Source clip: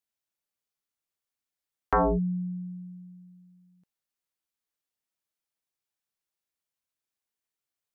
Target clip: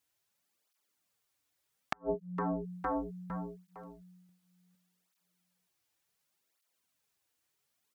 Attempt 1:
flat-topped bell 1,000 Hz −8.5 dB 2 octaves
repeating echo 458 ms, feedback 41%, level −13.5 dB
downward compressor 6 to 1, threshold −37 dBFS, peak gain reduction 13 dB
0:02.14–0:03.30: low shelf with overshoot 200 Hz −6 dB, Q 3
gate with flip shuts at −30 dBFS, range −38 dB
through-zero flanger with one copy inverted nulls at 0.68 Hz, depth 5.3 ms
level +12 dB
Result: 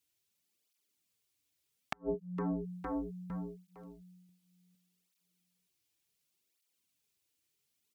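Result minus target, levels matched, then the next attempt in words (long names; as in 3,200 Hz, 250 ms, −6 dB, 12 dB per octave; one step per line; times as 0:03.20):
1,000 Hz band −5.5 dB
repeating echo 458 ms, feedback 41%, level −13.5 dB
downward compressor 6 to 1, threshold −37 dBFS, peak gain reduction 15.5 dB
0:02.14–0:03.30: low shelf with overshoot 200 Hz −6 dB, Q 3
gate with flip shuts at −30 dBFS, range −38 dB
through-zero flanger with one copy inverted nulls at 0.68 Hz, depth 5.3 ms
level +12 dB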